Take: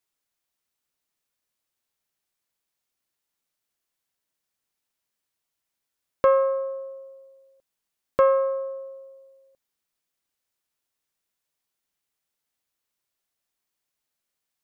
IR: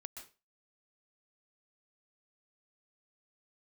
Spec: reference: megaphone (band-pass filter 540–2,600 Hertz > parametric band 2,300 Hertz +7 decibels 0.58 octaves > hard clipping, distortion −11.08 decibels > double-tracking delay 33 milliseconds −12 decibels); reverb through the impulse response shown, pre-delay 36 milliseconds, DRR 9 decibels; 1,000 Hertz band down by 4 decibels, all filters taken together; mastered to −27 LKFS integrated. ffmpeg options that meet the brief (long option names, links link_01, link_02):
-filter_complex "[0:a]equalizer=frequency=1000:width_type=o:gain=-4.5,asplit=2[link_01][link_02];[1:a]atrim=start_sample=2205,adelay=36[link_03];[link_02][link_03]afir=irnorm=-1:irlink=0,volume=-4.5dB[link_04];[link_01][link_04]amix=inputs=2:normalize=0,highpass=540,lowpass=2600,equalizer=frequency=2300:width_type=o:width=0.58:gain=7,asoftclip=type=hard:threshold=-20.5dB,asplit=2[link_05][link_06];[link_06]adelay=33,volume=-12dB[link_07];[link_05][link_07]amix=inputs=2:normalize=0,volume=3dB"